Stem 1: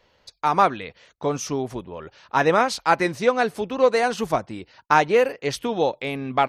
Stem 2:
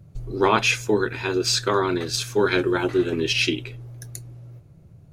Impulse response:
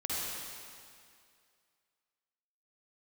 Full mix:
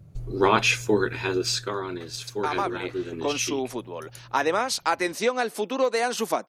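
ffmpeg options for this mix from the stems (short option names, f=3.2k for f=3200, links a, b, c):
-filter_complex "[0:a]highpass=f=220:w=0.5412,highpass=f=220:w=1.3066,highshelf=f=5.1k:g=10,acompressor=threshold=-20dB:ratio=4,adelay=2000,volume=0dB[a];[1:a]volume=-1dB,afade=t=out:st=1.25:d=0.51:silence=0.375837,asplit=2[b][c];[c]apad=whole_len=374009[d];[a][d]sidechaincompress=threshold=-28dB:ratio=8:attack=16:release=446[e];[e][b]amix=inputs=2:normalize=0"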